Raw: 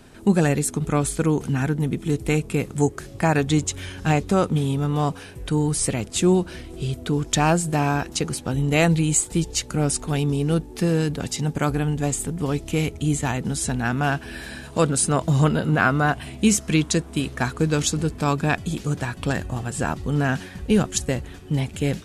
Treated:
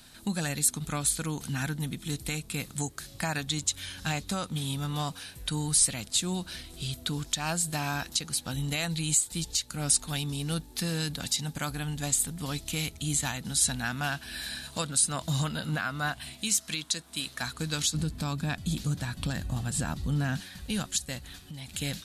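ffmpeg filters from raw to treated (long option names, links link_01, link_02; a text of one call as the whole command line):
ffmpeg -i in.wav -filter_complex "[0:a]asettb=1/sr,asplit=3[link_01][link_02][link_03];[link_01]atrim=end=16.334[link_04];[link_02]atrim=start=16.33:end=17.42,asetpts=PTS-STARTPTS,afade=type=in:duration=0.004:curve=qsin,afade=type=out:start_time=1.086:duration=0.004:curve=qsin,lowshelf=frequency=160:gain=-12[link_05];[link_03]atrim=start=17.416[link_06];[link_04][link_05]acrossfade=duration=0.004:curve1=hsin:curve2=qsin[link_07];[link_07][link_06]acrossfade=duration=0.004:curve1=qsin:curve2=hsin,asettb=1/sr,asplit=3[link_08][link_09][link_10];[link_08]atrim=end=17.944[link_11];[link_09]atrim=start=17.94:end=20.41,asetpts=PTS-STARTPTS,afade=type=in:duration=0.004:curve=qsin,afade=type=out:start_time=2.466:duration=0.004:curve=qsin,lowshelf=frequency=490:gain=11[link_12];[link_10]atrim=start=20.406[link_13];[link_11][link_12]acrossfade=duration=0.004:curve1=hsin:curve2=qsin[link_14];[link_14][link_13]acrossfade=duration=0.004:curve1=qsin:curve2=hsin,asettb=1/sr,asplit=3[link_15][link_16][link_17];[link_15]atrim=end=21.184[link_18];[link_16]atrim=start=21.18:end=21.69,asetpts=PTS-STARTPTS,afade=type=in:duration=0.004:curve=qsin,afade=type=out:start_time=0.506:duration=0.004:curve=qsin,acompressor=threshold=-29dB:ratio=6:attack=3.2:release=140:knee=1:detection=peak[link_19];[link_17]atrim=start=21.686[link_20];[link_18][link_19]acrossfade=duration=0.004:curve1=hsin:curve2=qsin[link_21];[link_21][link_20]acrossfade=duration=0.004:curve1=qsin:curve2=hsin,equalizer=frequency=100:width_type=o:width=0.67:gain=-3,equalizer=frequency=400:width_type=o:width=0.67:gain=-11,equalizer=frequency=1600:width_type=o:width=0.67:gain=3,equalizer=frequency=4000:width_type=o:width=0.67:gain=11,alimiter=limit=-13dB:level=0:latency=1:release=340,aemphasis=mode=production:type=50fm,volume=-7.5dB" out.wav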